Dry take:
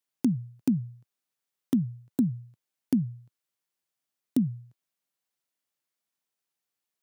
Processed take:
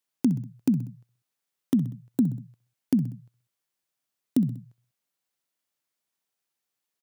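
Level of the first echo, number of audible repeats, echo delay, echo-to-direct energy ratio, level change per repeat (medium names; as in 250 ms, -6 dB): -15.5 dB, 3, 64 ms, -14.0 dB, -5.5 dB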